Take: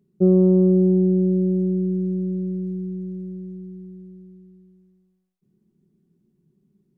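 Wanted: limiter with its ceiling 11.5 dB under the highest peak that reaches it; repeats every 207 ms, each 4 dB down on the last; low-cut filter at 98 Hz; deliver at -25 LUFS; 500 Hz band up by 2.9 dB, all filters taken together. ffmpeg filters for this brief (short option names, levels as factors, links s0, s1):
-af "highpass=98,equalizer=f=500:t=o:g=5,alimiter=limit=0.141:level=0:latency=1,aecho=1:1:207|414|621|828|1035|1242|1449|1656|1863:0.631|0.398|0.25|0.158|0.0994|0.0626|0.0394|0.0249|0.0157,volume=1.33"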